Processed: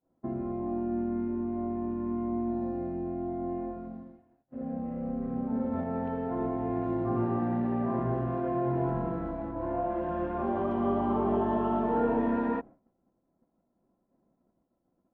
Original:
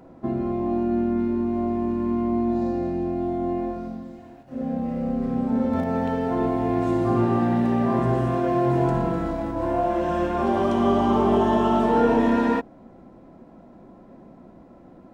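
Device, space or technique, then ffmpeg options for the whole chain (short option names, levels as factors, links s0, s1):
hearing-loss simulation: -af "lowpass=1700,agate=range=0.0224:threshold=0.02:ratio=3:detection=peak,volume=0.398"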